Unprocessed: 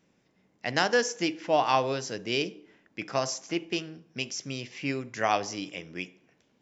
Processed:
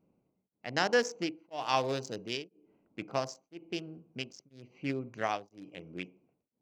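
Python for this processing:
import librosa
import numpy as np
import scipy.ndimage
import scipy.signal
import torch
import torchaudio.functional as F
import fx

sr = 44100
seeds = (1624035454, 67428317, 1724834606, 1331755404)

y = fx.wiener(x, sr, points=25)
y = fx.high_shelf(y, sr, hz=3000.0, db=8.5, at=(1.51, 2.37))
y = y * np.abs(np.cos(np.pi * 1.0 * np.arange(len(y)) / sr))
y = y * librosa.db_to_amplitude(-2.0)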